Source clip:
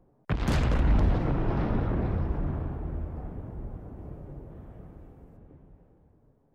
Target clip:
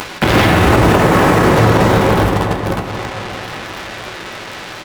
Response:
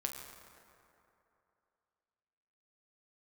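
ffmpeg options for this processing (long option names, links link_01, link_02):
-filter_complex "[0:a]aeval=exprs='val(0)+0.5*0.0168*sgn(val(0))':channel_layout=same,acrossover=split=3200[link_01][link_02];[link_02]acompressor=threshold=-58dB:ratio=4:attack=1:release=60[link_03];[link_01][link_03]amix=inputs=2:normalize=0,agate=range=-20dB:threshold=-31dB:ratio=16:detection=peak,highpass=frequency=320:poles=1,acompressor=mode=upward:threshold=-36dB:ratio=2.5,acrusher=bits=6:mix=0:aa=0.5,asplit=2[link_04][link_05];[link_05]adelay=366,lowpass=frequency=2000:poles=1,volume=-9dB,asplit=2[link_06][link_07];[link_07]adelay=366,lowpass=frequency=2000:poles=1,volume=0.55,asplit=2[link_08][link_09];[link_09]adelay=366,lowpass=frequency=2000:poles=1,volume=0.55,asplit=2[link_10][link_11];[link_11]adelay=366,lowpass=frequency=2000:poles=1,volume=0.55,asplit=2[link_12][link_13];[link_13]adelay=366,lowpass=frequency=2000:poles=1,volume=0.55,asplit=2[link_14][link_15];[link_15]adelay=366,lowpass=frequency=2000:poles=1,volume=0.55[link_16];[link_04][link_06][link_08][link_10][link_12][link_14][link_16]amix=inputs=7:normalize=0[link_17];[1:a]atrim=start_sample=2205,afade=type=out:start_time=0.44:duration=0.01,atrim=end_sample=19845,asetrate=52920,aresample=44100[link_18];[link_17][link_18]afir=irnorm=-1:irlink=0,asetrate=59535,aresample=44100,alimiter=level_in=29dB:limit=-1dB:release=50:level=0:latency=1,volume=-1dB"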